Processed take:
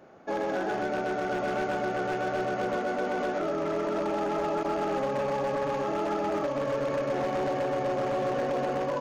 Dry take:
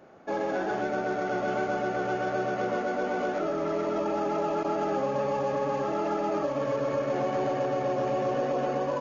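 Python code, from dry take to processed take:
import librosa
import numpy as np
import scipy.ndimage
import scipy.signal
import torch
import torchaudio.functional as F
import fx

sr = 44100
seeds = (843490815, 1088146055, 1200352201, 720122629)

y = 10.0 ** (-23.0 / 20.0) * (np.abs((x / 10.0 ** (-23.0 / 20.0) + 3.0) % 4.0 - 2.0) - 1.0)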